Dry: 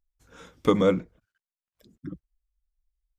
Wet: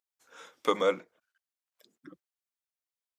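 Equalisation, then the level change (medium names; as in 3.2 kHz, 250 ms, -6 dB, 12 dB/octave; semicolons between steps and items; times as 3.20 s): high-pass 570 Hz 12 dB/octave; 0.0 dB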